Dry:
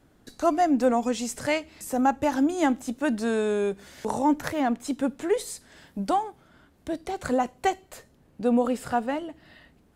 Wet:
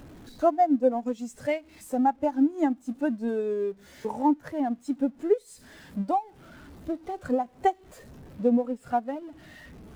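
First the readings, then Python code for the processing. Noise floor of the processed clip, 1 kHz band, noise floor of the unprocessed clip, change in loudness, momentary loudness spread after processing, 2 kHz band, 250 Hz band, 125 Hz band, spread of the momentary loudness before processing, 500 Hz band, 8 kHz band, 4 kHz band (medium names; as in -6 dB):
-55 dBFS, -1.0 dB, -61 dBFS, -1.0 dB, 13 LU, -8.5 dB, -1.0 dB, -2.5 dB, 11 LU, -1.0 dB, under -10 dB, under -10 dB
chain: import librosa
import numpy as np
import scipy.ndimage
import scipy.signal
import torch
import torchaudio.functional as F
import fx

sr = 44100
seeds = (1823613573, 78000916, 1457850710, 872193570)

y = x + 0.5 * 10.0 ** (-26.0 / 20.0) * np.sign(x)
y = fx.transient(y, sr, attack_db=6, sustain_db=-9)
y = fx.spectral_expand(y, sr, expansion=1.5)
y = y * librosa.db_to_amplitude(-5.0)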